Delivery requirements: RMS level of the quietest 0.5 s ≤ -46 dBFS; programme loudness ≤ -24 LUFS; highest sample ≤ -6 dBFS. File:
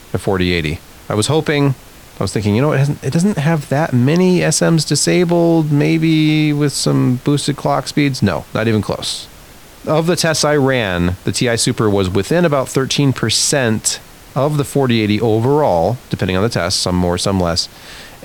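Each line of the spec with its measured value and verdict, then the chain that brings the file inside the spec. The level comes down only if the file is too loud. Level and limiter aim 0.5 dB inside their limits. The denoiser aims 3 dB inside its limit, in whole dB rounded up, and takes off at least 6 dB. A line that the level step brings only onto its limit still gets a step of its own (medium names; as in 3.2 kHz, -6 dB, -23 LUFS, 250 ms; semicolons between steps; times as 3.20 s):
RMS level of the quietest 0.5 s -39 dBFS: fail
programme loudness -15.0 LUFS: fail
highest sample -2.5 dBFS: fail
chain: trim -9.5 dB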